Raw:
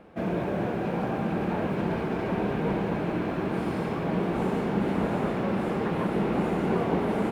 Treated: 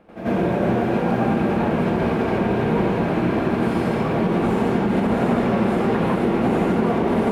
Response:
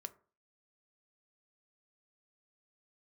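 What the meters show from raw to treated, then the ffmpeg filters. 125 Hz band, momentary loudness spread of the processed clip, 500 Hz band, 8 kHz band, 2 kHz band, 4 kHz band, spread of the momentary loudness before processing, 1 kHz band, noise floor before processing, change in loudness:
+7.0 dB, 1 LU, +7.5 dB, n/a, +7.0 dB, +7.0 dB, 3 LU, +7.5 dB, -31 dBFS, +7.5 dB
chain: -filter_complex "[0:a]alimiter=limit=-19.5dB:level=0:latency=1:release=78,asplit=2[a][b];[1:a]atrim=start_sample=2205,asetrate=26019,aresample=44100,adelay=88[c];[b][c]afir=irnorm=-1:irlink=0,volume=12dB[d];[a][d]amix=inputs=2:normalize=0,volume=-2.5dB"

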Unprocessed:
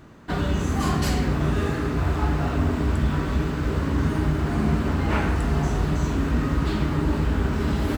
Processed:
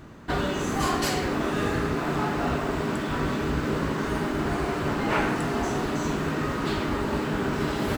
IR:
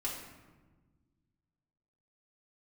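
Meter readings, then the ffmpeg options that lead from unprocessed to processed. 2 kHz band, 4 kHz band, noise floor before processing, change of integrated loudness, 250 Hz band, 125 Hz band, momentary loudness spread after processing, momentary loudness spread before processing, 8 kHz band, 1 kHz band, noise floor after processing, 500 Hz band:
+2.0 dB, +2.0 dB, -27 dBFS, -3.0 dB, -2.5 dB, -8.0 dB, 3 LU, 2 LU, +2.0 dB, +2.0 dB, -30 dBFS, +1.5 dB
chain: -af "afftfilt=real='re*lt(hypot(re,im),0.398)':imag='im*lt(hypot(re,im),0.398)':win_size=1024:overlap=0.75,volume=2dB"

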